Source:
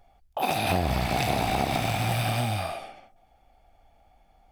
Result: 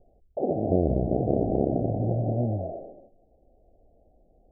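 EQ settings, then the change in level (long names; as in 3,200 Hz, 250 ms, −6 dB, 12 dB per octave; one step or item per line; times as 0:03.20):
Butterworth low-pass 620 Hz 48 dB per octave
parametric band 410 Hz +10.5 dB 1.4 octaves
0.0 dB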